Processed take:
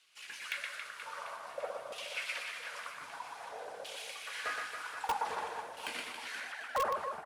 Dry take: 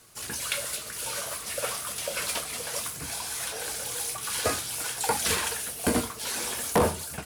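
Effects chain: 6.40–6.85 s: formants replaced by sine waves; LFO band-pass saw down 0.52 Hz 550–3000 Hz; reverse bouncing-ball echo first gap 120 ms, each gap 1.3×, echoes 5; in parallel at -5.5 dB: integer overflow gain 22 dB; on the sum: trim -5.5 dB

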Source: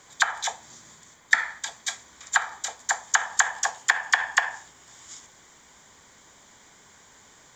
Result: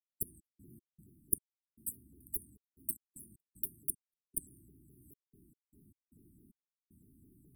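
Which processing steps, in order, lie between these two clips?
self-modulated delay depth 0.48 ms; harmonic-percussive split percussive -9 dB; trance gate ".x.x.xx..xxxx" 76 bpm -60 dB; brick-wall FIR band-stop 380–8800 Hz; vibrato with a chosen wave saw down 4.7 Hz, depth 250 cents; trim +5 dB

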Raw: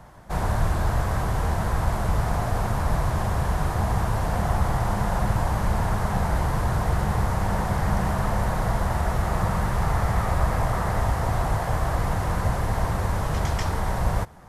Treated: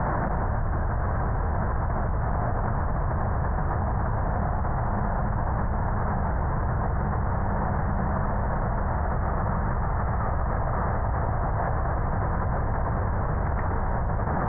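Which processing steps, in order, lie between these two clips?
steep low-pass 1.8 kHz 48 dB/octave; level flattener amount 100%; trim -7.5 dB

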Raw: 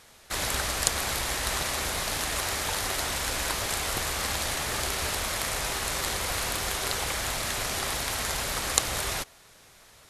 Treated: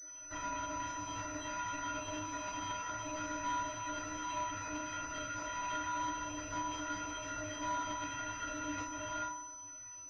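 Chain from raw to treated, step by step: random holes in the spectrogram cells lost 34%; compression, threshold -35 dBFS, peak gain reduction 17 dB; peaking EQ 1.4 kHz +3.5 dB 2 oct; inharmonic resonator 290 Hz, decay 0.65 s, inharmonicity 0.03; FDN reverb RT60 0.77 s, low-frequency decay 1.3×, high-frequency decay 0.6×, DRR -9 dB; class-D stage that switches slowly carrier 6 kHz; trim +7.5 dB

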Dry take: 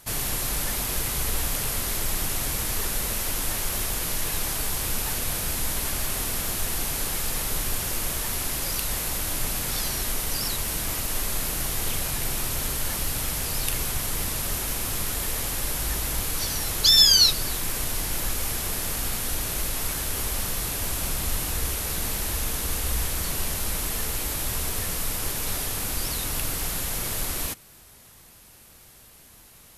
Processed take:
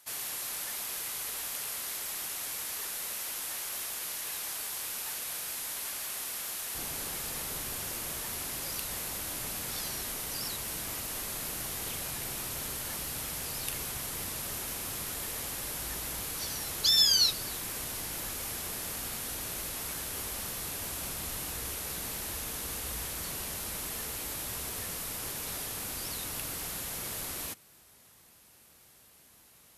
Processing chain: high-pass 940 Hz 6 dB/octave, from 6.75 s 130 Hz; trim -7.5 dB

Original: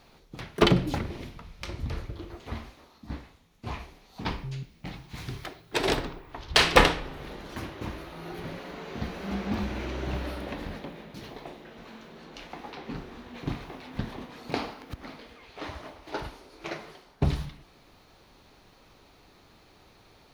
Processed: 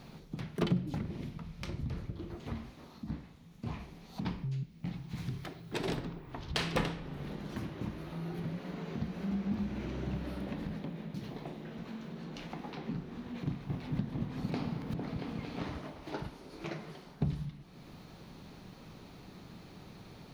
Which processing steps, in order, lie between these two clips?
peaking EQ 170 Hz +14 dB 1.4 oct; compression 2:1, threshold -45 dBFS, peak gain reduction 21.5 dB; 13.44–15.80 s: delay with an opening low-pass 227 ms, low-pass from 200 Hz, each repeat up 2 oct, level 0 dB; trim +1 dB

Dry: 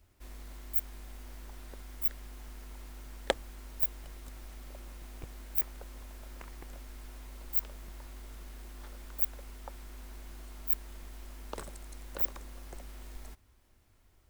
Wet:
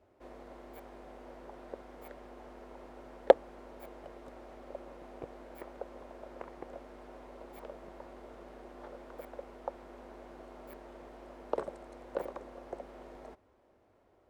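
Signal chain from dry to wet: band-pass filter 540 Hz, Q 1.7; trim +12.5 dB

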